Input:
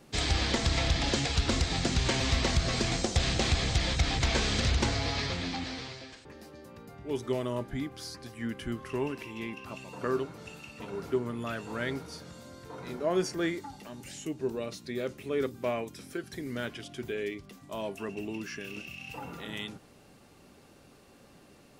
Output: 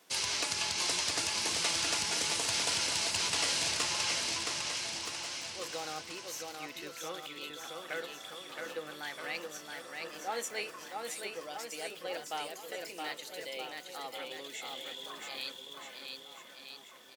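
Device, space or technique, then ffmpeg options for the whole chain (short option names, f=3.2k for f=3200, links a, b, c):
nightcore: -af "highpass=f=1.3k:p=1,asetrate=56007,aresample=44100,highpass=64,aecho=1:1:670|1273|1816|2304|2744:0.631|0.398|0.251|0.158|0.1"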